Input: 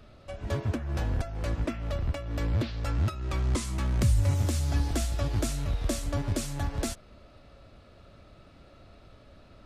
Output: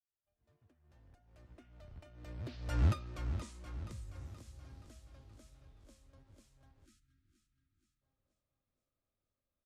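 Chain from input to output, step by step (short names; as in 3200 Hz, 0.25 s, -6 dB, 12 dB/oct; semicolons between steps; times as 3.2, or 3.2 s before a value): opening faded in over 2.03 s; Doppler pass-by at 2.84, 19 m/s, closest 1.4 m; on a send: feedback echo 0.475 s, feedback 51%, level -10 dB; on the sum: spectral delete 6.85–8.02, 370–1200 Hz; gain -1 dB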